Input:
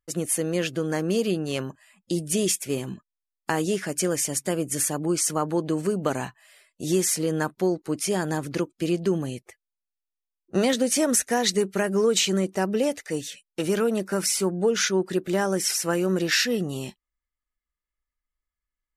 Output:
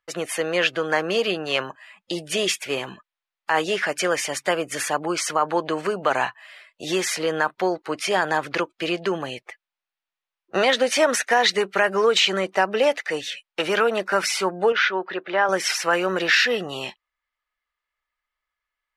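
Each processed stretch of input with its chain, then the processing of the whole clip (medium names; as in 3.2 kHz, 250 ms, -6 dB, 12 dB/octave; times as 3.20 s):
14.72–15.49 s: high-pass 410 Hz 6 dB/octave + distance through air 280 m
whole clip: three-band isolator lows -21 dB, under 590 Hz, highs -21 dB, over 4 kHz; loudness maximiser +19.5 dB; trim -7 dB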